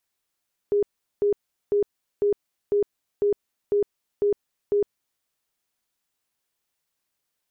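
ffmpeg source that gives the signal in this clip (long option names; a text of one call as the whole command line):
ffmpeg -f lavfi -i "aevalsrc='0.133*sin(2*PI*409*mod(t,0.5))*lt(mod(t,0.5),44/409)':duration=4.5:sample_rate=44100" out.wav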